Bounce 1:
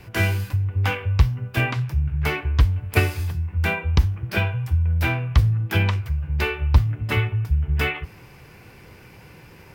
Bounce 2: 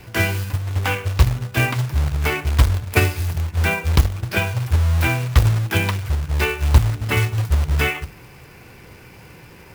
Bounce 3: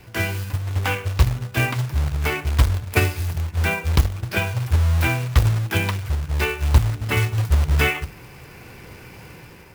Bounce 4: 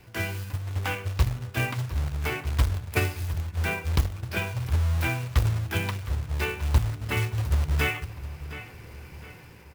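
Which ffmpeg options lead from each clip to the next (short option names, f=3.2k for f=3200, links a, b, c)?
-af "bandreject=f=50:t=h:w=6,bandreject=f=100:t=h:w=6,bandreject=f=150:t=h:w=6,bandreject=f=200:t=h:w=6,acrusher=bits=3:mode=log:mix=0:aa=0.000001,volume=3dB"
-af "dynaudnorm=f=220:g=5:m=6.5dB,volume=-4.5dB"
-filter_complex "[0:a]asplit=2[a][b];[b]adelay=714,lowpass=f=4.4k:p=1,volume=-13.5dB,asplit=2[c][d];[d]adelay=714,lowpass=f=4.4k:p=1,volume=0.41,asplit=2[e][f];[f]adelay=714,lowpass=f=4.4k:p=1,volume=0.41,asplit=2[g][h];[h]adelay=714,lowpass=f=4.4k:p=1,volume=0.41[i];[a][c][e][g][i]amix=inputs=5:normalize=0,volume=-6.5dB"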